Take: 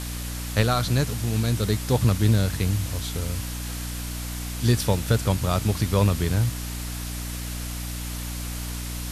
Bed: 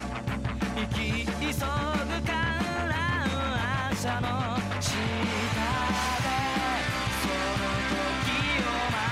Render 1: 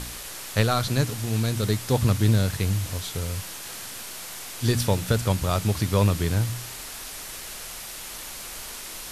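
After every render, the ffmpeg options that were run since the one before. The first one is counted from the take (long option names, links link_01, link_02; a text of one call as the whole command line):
ffmpeg -i in.wav -af "bandreject=frequency=60:width_type=h:width=4,bandreject=frequency=120:width_type=h:width=4,bandreject=frequency=180:width_type=h:width=4,bandreject=frequency=240:width_type=h:width=4,bandreject=frequency=300:width_type=h:width=4" out.wav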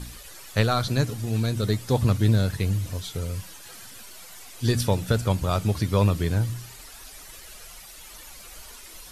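ffmpeg -i in.wav -af "afftdn=noise_reduction=11:noise_floor=-38" out.wav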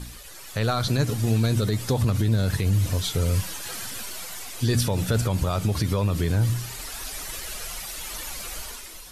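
ffmpeg -i in.wav -af "dynaudnorm=framelen=100:gausssize=11:maxgain=9.5dB,alimiter=limit=-13.5dB:level=0:latency=1:release=61" out.wav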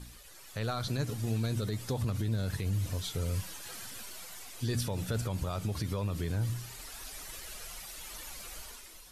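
ffmpeg -i in.wav -af "volume=-10dB" out.wav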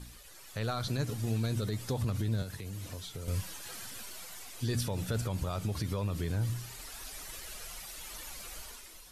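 ffmpeg -i in.wav -filter_complex "[0:a]asettb=1/sr,asplit=3[link_01][link_02][link_03];[link_01]atrim=end=2.424[link_04];[link_02]atrim=start=2.42:end=3.28,asetpts=PTS-STARTPTS,afade=type=in:duration=0.004:curve=qsin,afade=type=out:start_time=0.856:duration=0.004:curve=qsin,acrossover=split=210|5400[link_05][link_06][link_07];[link_05]acompressor=threshold=-43dB:ratio=4[link_08];[link_06]acompressor=threshold=-45dB:ratio=4[link_09];[link_07]acompressor=threshold=-51dB:ratio=4[link_10];[link_08][link_09][link_10]amix=inputs=3:normalize=0[link_11];[link_03]atrim=start=3.276[link_12];[link_04][link_11]acrossfade=duration=0.004:curve1=hsin:curve2=qsin[link_13];[link_13][link_12]acrossfade=duration=0.004:curve1=qsin:curve2=hsin" out.wav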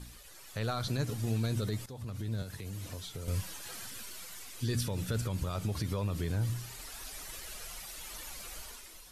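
ffmpeg -i in.wav -filter_complex "[0:a]asettb=1/sr,asplit=3[link_01][link_02][link_03];[link_01]atrim=end=3.884[link_04];[link_02]atrim=start=3.88:end=5.55,asetpts=PTS-STARTPTS,afade=type=in:duration=0.004:curve=qsin,afade=type=out:start_time=1.666:duration=0.004:curve=qsin,equalizer=frequency=730:width_type=o:width=0.72:gain=-5.5[link_05];[link_03]atrim=start=5.546[link_06];[link_04][link_05]acrossfade=duration=0.004:curve1=hsin:curve2=qsin[link_07];[link_07][link_06]acrossfade=duration=0.004:curve1=qsin:curve2=hsin,asplit=2[link_08][link_09];[link_08]atrim=end=1.86,asetpts=PTS-STARTPTS,afade=type=out:start_time=1.856:duration=0.004:curve=hsin:silence=0.16788[link_10];[link_09]atrim=start=1.86,asetpts=PTS-STARTPTS,afade=type=in:duration=0.82:silence=0.16788[link_11];[link_10][link_11]concat=n=2:v=0:a=1" out.wav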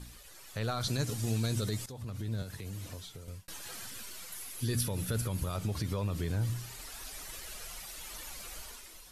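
ffmpeg -i in.wav -filter_complex "[0:a]asettb=1/sr,asplit=3[link_01][link_02][link_03];[link_01]atrim=end=0.814[link_04];[link_02]atrim=start=0.81:end=1.92,asetpts=PTS-STARTPTS,afade=type=in:duration=0.004:curve=qsin,afade=type=out:start_time=1.106:duration=0.004:curve=qsin,equalizer=frequency=7500:width=0.55:gain=7[link_05];[link_03]atrim=start=1.916[link_06];[link_04][link_05]acrossfade=duration=0.004:curve1=hsin:curve2=qsin[link_07];[link_07][link_06]acrossfade=duration=0.004:curve1=qsin:curve2=hsin,asettb=1/sr,asplit=3[link_08][link_09][link_10];[link_08]atrim=end=4.324[link_11];[link_09]atrim=start=4.32:end=5.57,asetpts=PTS-STARTPTS,afade=type=in:duration=0.004:curve=qsin,afade=type=out:start_time=1.246:duration=0.004:curve=qsin,equalizer=frequency=11000:width=5.5:gain=15[link_12];[link_10]atrim=start=5.566[link_13];[link_11][link_12]acrossfade=duration=0.004:curve1=hsin:curve2=qsin[link_14];[link_14][link_13]acrossfade=duration=0.004:curve1=qsin:curve2=hsin,asplit=2[link_15][link_16];[link_15]atrim=end=3.48,asetpts=PTS-STARTPTS,afade=type=out:start_time=2.62:duration=0.86:curve=qsin[link_17];[link_16]atrim=start=3.48,asetpts=PTS-STARTPTS,afade=type=in:duration=0.004:curve=hsin[link_18];[link_17][link_18]concat=n=2:v=0:a=1" out.wav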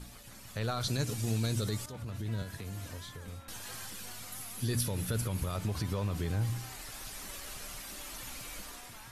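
ffmpeg -i in.wav -i bed.wav -filter_complex "[1:a]volume=-24.5dB[link_01];[0:a][link_01]amix=inputs=2:normalize=0" out.wav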